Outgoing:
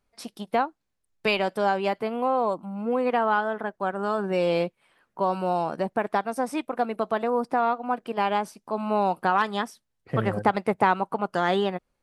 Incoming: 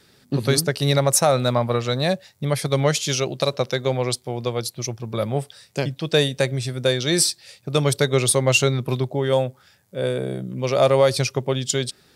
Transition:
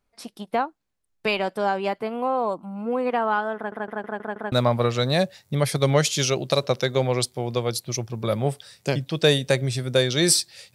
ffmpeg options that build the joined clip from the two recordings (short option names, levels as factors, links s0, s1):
-filter_complex "[0:a]apad=whole_dur=10.74,atrim=end=10.74,asplit=6[s0][s1][s2][s3][s4][s5];[s0]atrim=end=3.722[s6];[s1]atrim=start=3.558:end=3.722[s7];[s2]atrim=start=3.558:end=3.722[s8];[s3]atrim=start=3.558:end=3.722[s9];[s4]atrim=start=3.558:end=3.722[s10];[s5]atrim=start=3.558:end=3.722[s11];[1:a]atrim=start=1.418:end=7.64[s12];[s6][s7]acrossfade=d=0.004:c1=hsin:c2=hsin[s13];[s13][s8]acrossfade=d=0.004:c1=hsin:c2=hsin[s14];[s14][s9]acrossfade=d=0.004:c1=hsin:c2=hsin[s15];[s15][s10]acrossfade=d=0.004:c1=hsin:c2=hsin[s16];[s16][s11]acrossfade=d=0.004:c1=hsin:c2=hsin[s17];[s17][s12]acrossfade=d=0.004:c1=hsin:c2=hsin"